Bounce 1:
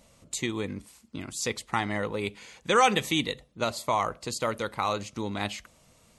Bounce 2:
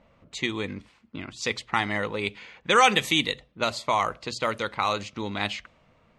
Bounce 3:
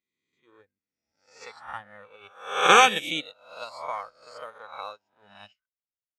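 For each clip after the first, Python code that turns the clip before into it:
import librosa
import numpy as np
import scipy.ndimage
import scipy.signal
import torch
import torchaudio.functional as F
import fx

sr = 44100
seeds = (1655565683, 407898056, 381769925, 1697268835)

y1 = fx.hum_notches(x, sr, base_hz=60, count=2)
y1 = fx.env_lowpass(y1, sr, base_hz=1600.0, full_db=-23.5)
y1 = fx.peak_eq(y1, sr, hz=2600.0, db=6.0, octaves=2.4)
y2 = fx.spec_swells(y1, sr, rise_s=1.59)
y2 = fx.noise_reduce_blind(y2, sr, reduce_db=13)
y2 = fx.upward_expand(y2, sr, threshold_db=-41.0, expansion=2.5)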